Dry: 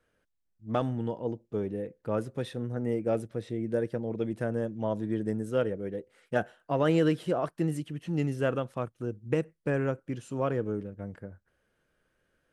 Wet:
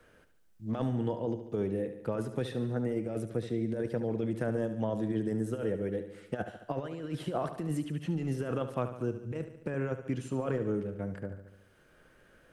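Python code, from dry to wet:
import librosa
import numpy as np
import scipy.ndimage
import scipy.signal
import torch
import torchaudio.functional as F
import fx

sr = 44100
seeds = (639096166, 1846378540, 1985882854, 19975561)

y = fx.over_compress(x, sr, threshold_db=-30.0, ratio=-0.5)
y = fx.echo_feedback(y, sr, ms=72, feedback_pct=54, wet_db=-11.0)
y = fx.band_squash(y, sr, depth_pct=40)
y = F.gain(torch.from_numpy(y), -1.0).numpy()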